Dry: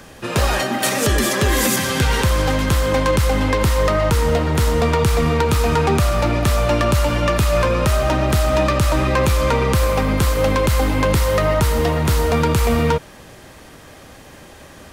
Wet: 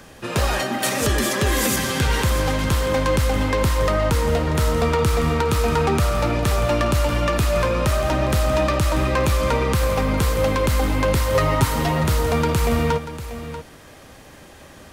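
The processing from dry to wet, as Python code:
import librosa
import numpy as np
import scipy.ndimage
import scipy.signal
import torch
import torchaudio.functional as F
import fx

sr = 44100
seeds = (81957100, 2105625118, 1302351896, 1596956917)

y = fx.dmg_tone(x, sr, hz=1300.0, level_db=-30.0, at=(4.57, 6.32), fade=0.02)
y = fx.comb(y, sr, ms=7.4, depth=0.85, at=(11.34, 12.04))
y = y + 10.0 ** (-12.5 / 20.0) * np.pad(y, (int(638 * sr / 1000.0), 0))[:len(y)]
y = y * 10.0 ** (-3.0 / 20.0)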